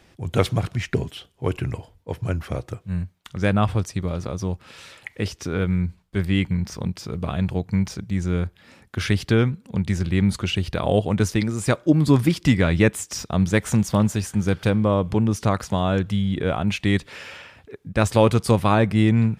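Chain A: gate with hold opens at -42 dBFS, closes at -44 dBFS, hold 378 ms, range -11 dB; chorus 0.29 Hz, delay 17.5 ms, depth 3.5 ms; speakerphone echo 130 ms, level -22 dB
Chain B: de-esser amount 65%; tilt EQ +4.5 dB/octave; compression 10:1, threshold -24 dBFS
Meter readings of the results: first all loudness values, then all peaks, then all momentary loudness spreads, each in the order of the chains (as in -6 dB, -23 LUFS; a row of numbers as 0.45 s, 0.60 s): -25.5 LUFS, -30.0 LUFS; -5.5 dBFS, -6.0 dBFS; 12 LU, 8 LU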